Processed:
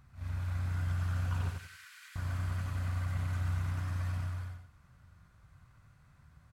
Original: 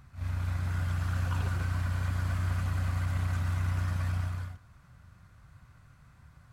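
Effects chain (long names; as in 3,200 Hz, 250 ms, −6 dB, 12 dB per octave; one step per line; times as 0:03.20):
0:01.49–0:02.16: inverse Chebyshev high-pass filter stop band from 500 Hz, stop band 60 dB
repeating echo 90 ms, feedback 27%, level −5 dB
level −6 dB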